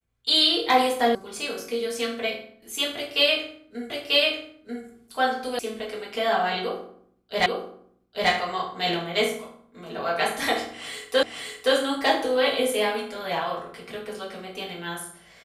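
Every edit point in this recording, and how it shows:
1.15 sound cut off
3.9 repeat of the last 0.94 s
5.59 sound cut off
7.46 repeat of the last 0.84 s
11.23 repeat of the last 0.52 s

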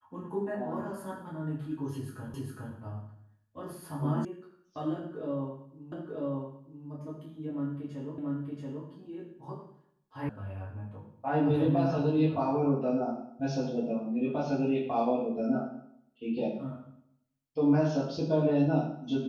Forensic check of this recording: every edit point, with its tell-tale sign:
2.34 repeat of the last 0.41 s
4.25 sound cut off
5.92 repeat of the last 0.94 s
8.18 repeat of the last 0.68 s
10.29 sound cut off

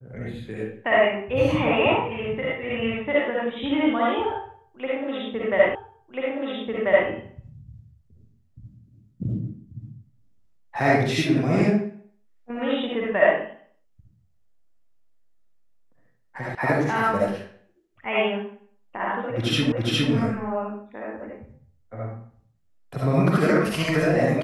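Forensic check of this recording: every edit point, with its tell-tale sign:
5.75 repeat of the last 1.34 s
16.55 sound cut off
19.72 repeat of the last 0.41 s

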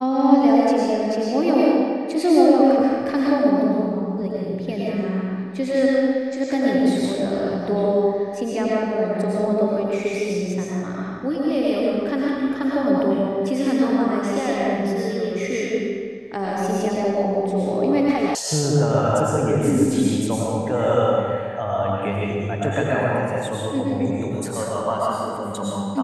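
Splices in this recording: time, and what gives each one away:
18.35 sound cut off

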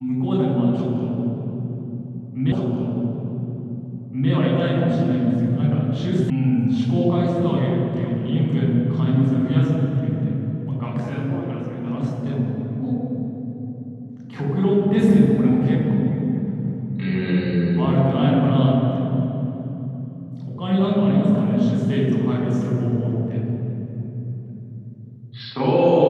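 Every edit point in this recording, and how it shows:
2.52 repeat of the last 1.78 s
6.3 sound cut off

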